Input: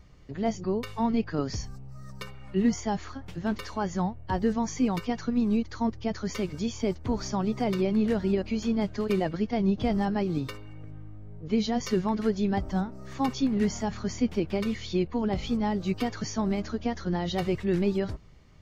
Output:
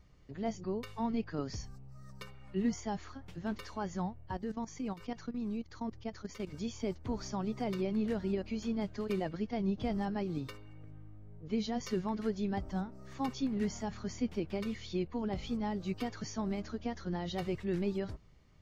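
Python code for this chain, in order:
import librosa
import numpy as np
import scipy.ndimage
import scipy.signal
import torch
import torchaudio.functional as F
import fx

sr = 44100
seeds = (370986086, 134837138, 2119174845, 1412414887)

y = fx.level_steps(x, sr, step_db=14, at=(4.28, 6.47))
y = F.gain(torch.from_numpy(y), -8.0).numpy()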